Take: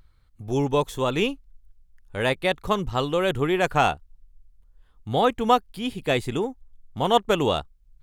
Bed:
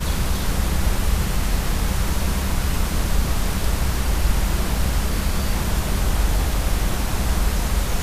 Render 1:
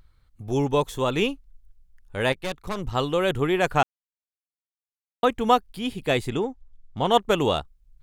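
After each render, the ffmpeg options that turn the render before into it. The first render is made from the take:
-filter_complex "[0:a]asettb=1/sr,asplit=3[s0][s1][s2];[s0]atrim=end=2.324[s3];[s1]atrim=start=2.32:end=2.84,asetpts=PTS-STARTPTS,afade=t=in:d=0.004:c=qsin,afade=t=out:st=0.516:d=0.004:c=qsin,aeval=exprs='(tanh(17.8*val(0)+0.8)-tanh(0.8))/17.8':c=same[s4];[s2]atrim=start=2.836[s5];[s3][s4]acrossfade=d=0.004:c1=hsin:c2=qsin[s6];[s6][s5]acrossfade=d=0.004:c1=qsin:c2=hsin,asettb=1/sr,asplit=3[s7][s8][s9];[s7]atrim=end=6.304[s10];[s8]atrim=start=6.3:end=7.11,asetpts=PTS-STARTPTS,afade=t=in:d=0.004:c=qsin,afade=t=out:st=0.806:d=0.004:c=qsin,lowpass=6500[s11];[s9]atrim=start=7.106[s12];[s10][s11]acrossfade=d=0.004:c1=hsin:c2=qsin[s13];[s13][s12]acrossfade=d=0.004:c1=qsin:c2=hsin,asplit=3[s14][s15][s16];[s14]atrim=end=3.83,asetpts=PTS-STARTPTS,afade=t=out:st=3.826:d=0.004:c=hsin[s17];[s15]atrim=start=3.83:end=5.23,asetpts=PTS-STARTPTS,volume=0[s18];[s16]atrim=start=5.23,asetpts=PTS-STARTPTS,afade=t=in:d=0.004:c=hsin[s19];[s17][s18][s19]concat=n=3:v=0:a=1"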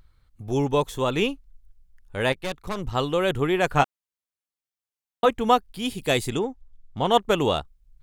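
-filter_complex "[0:a]asettb=1/sr,asplit=3[s0][s1][s2];[s0]atrim=end=3.724[s3];[s1]atrim=start=3.72:end=5.29,asetpts=PTS-STARTPTS,afade=t=in:d=0.004:c=qsin,afade=t=out:st=1.566:d=0.004:c=qsin,asplit=2[s4][s5];[s5]adelay=14,volume=0.501[s6];[s4][s6]amix=inputs=2:normalize=0,atrim=end_sample=69237[s7];[s2]atrim=start=5.286[s8];[s3][s7]acrossfade=d=0.004:c1=hsin:c2=qsin[s9];[s9][s8]acrossfade=d=0.004:c1=qsin:c2=hsin,asettb=1/sr,asplit=3[s10][s11][s12];[s10]atrim=end=5.794[s13];[s11]atrim=start=5.79:end=6.39,asetpts=PTS-STARTPTS,afade=t=in:d=0.004:c=qsin,afade=t=out:st=0.596:d=0.004:c=qsin,bass=f=250:g=0,treble=f=4000:g=9[s14];[s12]atrim=start=6.386[s15];[s13][s14]acrossfade=d=0.004:c1=hsin:c2=qsin[s16];[s16][s15]acrossfade=d=0.004:c1=qsin:c2=hsin"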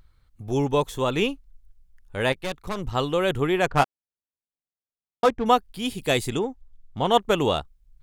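-filter_complex "[0:a]asettb=1/sr,asplit=3[s0][s1][s2];[s0]atrim=end=3.664[s3];[s1]atrim=start=3.66:end=5.46,asetpts=PTS-STARTPTS,afade=t=in:d=0.004:c=qsin,afade=t=out:st=1.796:d=0.004:c=qsin,adynamicsmooth=sensitivity=3:basefreq=710[s4];[s2]atrim=start=5.456[s5];[s3][s4]acrossfade=d=0.004:c1=hsin:c2=qsin[s6];[s6][s5]acrossfade=d=0.004:c1=qsin:c2=hsin"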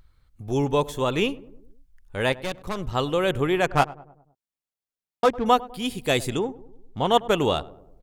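-filter_complex "[0:a]asplit=2[s0][s1];[s1]adelay=101,lowpass=f=1000:p=1,volume=0.126,asplit=2[s2][s3];[s3]adelay=101,lowpass=f=1000:p=1,volume=0.55,asplit=2[s4][s5];[s5]adelay=101,lowpass=f=1000:p=1,volume=0.55,asplit=2[s6][s7];[s7]adelay=101,lowpass=f=1000:p=1,volume=0.55,asplit=2[s8][s9];[s9]adelay=101,lowpass=f=1000:p=1,volume=0.55[s10];[s0][s2][s4][s6][s8][s10]amix=inputs=6:normalize=0"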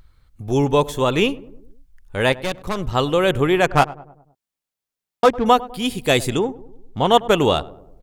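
-af "volume=1.88,alimiter=limit=0.794:level=0:latency=1"

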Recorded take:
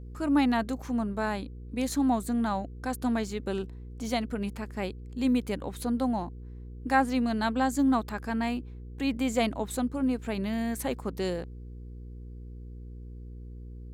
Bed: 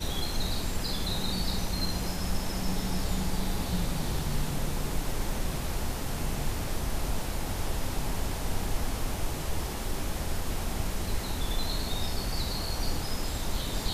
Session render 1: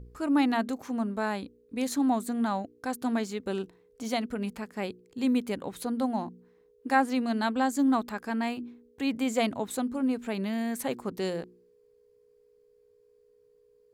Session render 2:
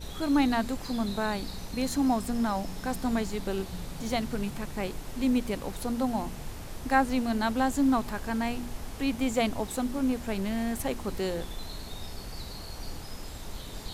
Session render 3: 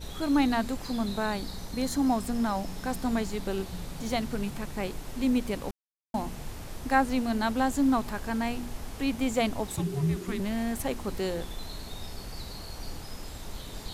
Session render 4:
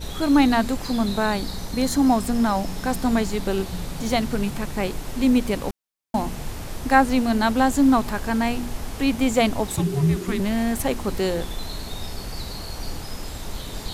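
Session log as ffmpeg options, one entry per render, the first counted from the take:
-af "bandreject=f=60:t=h:w=4,bandreject=f=120:t=h:w=4,bandreject=f=180:t=h:w=4,bandreject=f=240:t=h:w=4,bandreject=f=300:t=h:w=4,bandreject=f=360:t=h:w=4"
-filter_complex "[1:a]volume=0.376[s0];[0:a][s0]amix=inputs=2:normalize=0"
-filter_complex "[0:a]asettb=1/sr,asplit=3[s0][s1][s2];[s0]atrim=end=1.384[s3];[s1]atrim=start=1.38:end=2.07,asetpts=PTS-STARTPTS,afade=t=in:d=0.004:c=qsin,afade=t=out:st=0.686:d=0.004:c=qsin,equalizer=f=2600:w=7.2:g=-7[s4];[s2]atrim=start=2.066[s5];[s3][s4]acrossfade=d=0.004:c1=hsin:c2=qsin[s6];[s6][s5]acrossfade=d=0.004:c1=qsin:c2=hsin,asettb=1/sr,asplit=3[s7][s8][s9];[s7]atrim=end=9.764[s10];[s8]atrim=start=9.76:end=10.4,asetpts=PTS-STARTPTS,afade=t=in:d=0.004:c=qsin,afade=t=out:st=0.636:d=0.004:c=qsin,afreqshift=-420[s11];[s9]atrim=start=10.396[s12];[s10][s11]acrossfade=d=0.004:c1=hsin:c2=qsin[s13];[s13][s12]acrossfade=d=0.004:c1=qsin:c2=hsin,asplit=3[s14][s15][s16];[s14]atrim=end=5.71,asetpts=PTS-STARTPTS,afade=t=out:st=5.706:d=0.004:c=hsin[s17];[s15]atrim=start=5.71:end=6.14,asetpts=PTS-STARTPTS,volume=0[s18];[s16]atrim=start=6.14,asetpts=PTS-STARTPTS,afade=t=in:d=0.004:c=hsin[s19];[s17][s18][s19]concat=n=3:v=0:a=1"
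-af "volume=2.37"

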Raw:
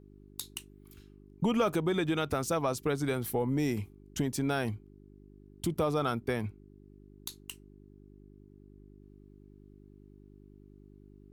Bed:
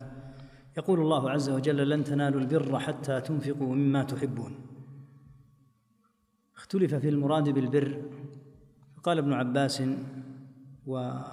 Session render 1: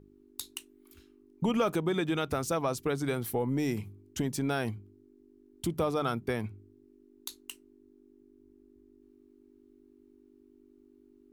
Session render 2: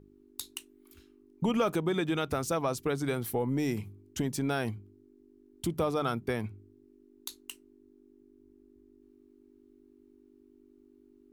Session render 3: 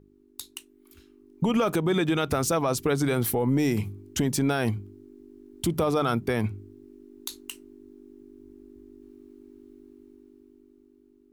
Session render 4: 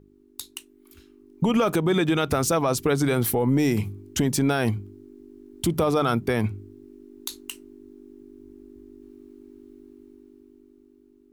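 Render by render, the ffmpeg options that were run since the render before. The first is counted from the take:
-af "bandreject=f=50:t=h:w=4,bandreject=f=100:t=h:w=4,bandreject=f=150:t=h:w=4,bandreject=f=200:t=h:w=4"
-af anull
-af "dynaudnorm=f=260:g=11:m=3.35,alimiter=limit=0.158:level=0:latency=1:release=83"
-af "volume=1.33"

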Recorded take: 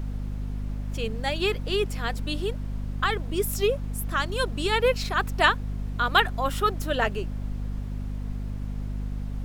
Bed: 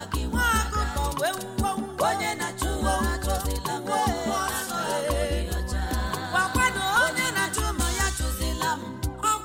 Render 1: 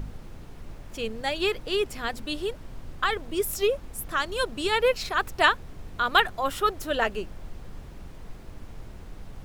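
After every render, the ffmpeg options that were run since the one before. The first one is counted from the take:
-af "bandreject=f=50:t=h:w=4,bandreject=f=100:t=h:w=4,bandreject=f=150:t=h:w=4,bandreject=f=200:t=h:w=4,bandreject=f=250:t=h:w=4"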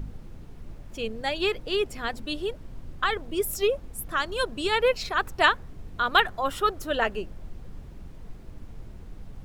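-af "afftdn=nr=6:nf=-44"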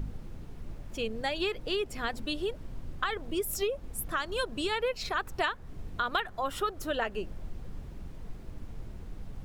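-af "acompressor=threshold=0.0398:ratio=4"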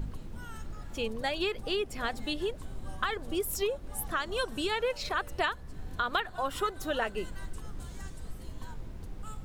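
-filter_complex "[1:a]volume=0.0562[s0];[0:a][s0]amix=inputs=2:normalize=0"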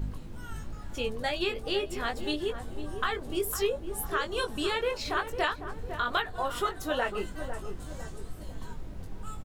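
-filter_complex "[0:a]asplit=2[s0][s1];[s1]adelay=20,volume=0.562[s2];[s0][s2]amix=inputs=2:normalize=0,asplit=2[s3][s4];[s4]adelay=503,lowpass=f=980:p=1,volume=0.398,asplit=2[s5][s6];[s6]adelay=503,lowpass=f=980:p=1,volume=0.52,asplit=2[s7][s8];[s8]adelay=503,lowpass=f=980:p=1,volume=0.52,asplit=2[s9][s10];[s10]adelay=503,lowpass=f=980:p=1,volume=0.52,asplit=2[s11][s12];[s12]adelay=503,lowpass=f=980:p=1,volume=0.52,asplit=2[s13][s14];[s14]adelay=503,lowpass=f=980:p=1,volume=0.52[s15];[s3][s5][s7][s9][s11][s13][s15]amix=inputs=7:normalize=0"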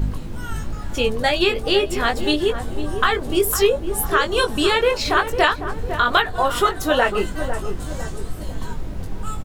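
-af "volume=3.98"

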